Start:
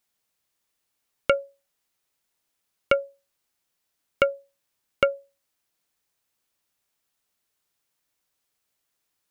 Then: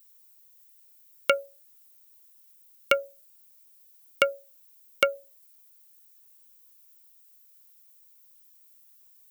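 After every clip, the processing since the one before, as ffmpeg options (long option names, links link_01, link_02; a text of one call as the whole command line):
ffmpeg -i in.wav -af "aemphasis=mode=production:type=riaa,volume=-1dB" out.wav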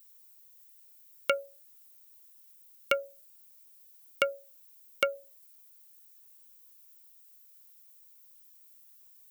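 ffmpeg -i in.wav -af "alimiter=limit=-6.5dB:level=0:latency=1:release=245" out.wav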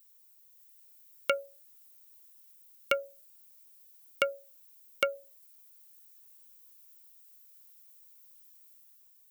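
ffmpeg -i in.wav -af "dynaudnorm=framelen=140:gausssize=9:maxgain=3.5dB,volume=-3.5dB" out.wav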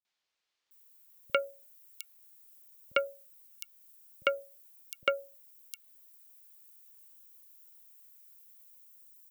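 ffmpeg -i in.wav -filter_complex "[0:a]acrossover=split=150|4700[link_01][link_02][link_03];[link_02]adelay=50[link_04];[link_03]adelay=710[link_05];[link_01][link_04][link_05]amix=inputs=3:normalize=0" out.wav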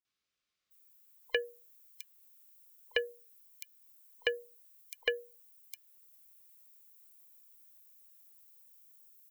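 ffmpeg -i in.wav -af "afftfilt=real='real(if(between(b,1,1008),(2*floor((b-1)/48)+1)*48-b,b),0)':imag='imag(if(between(b,1,1008),(2*floor((b-1)/48)+1)*48-b,b),0)*if(between(b,1,1008),-1,1)':win_size=2048:overlap=0.75,volume=-3dB" out.wav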